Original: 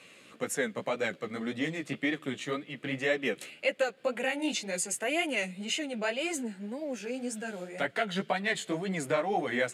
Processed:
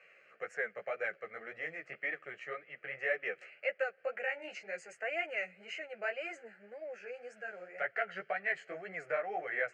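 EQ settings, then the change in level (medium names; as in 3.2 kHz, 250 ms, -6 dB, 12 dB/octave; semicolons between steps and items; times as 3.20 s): band-pass filter 1.7 kHz, Q 0.57; distance through air 160 m; static phaser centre 980 Hz, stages 6; 0.0 dB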